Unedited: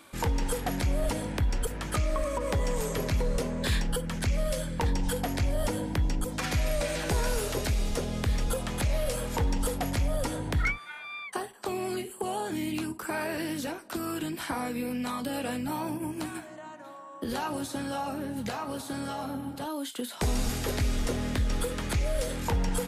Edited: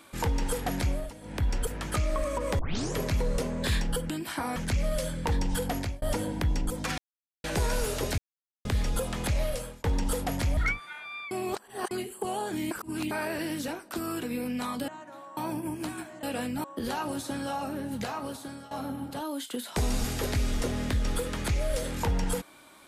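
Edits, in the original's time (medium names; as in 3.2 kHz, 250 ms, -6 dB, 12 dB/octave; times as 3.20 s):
0.87–1.45 s: dip -15 dB, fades 0.24 s
2.59 s: tape start 0.36 s
5.31–5.56 s: fade out
6.52–6.98 s: mute
7.72–8.19 s: mute
8.98–9.38 s: fade out
10.11–10.56 s: delete
11.30–11.90 s: reverse
12.70–13.10 s: reverse
14.22–14.68 s: move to 4.10 s
15.33–15.74 s: swap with 16.60–17.09 s
18.65–19.16 s: fade out, to -16.5 dB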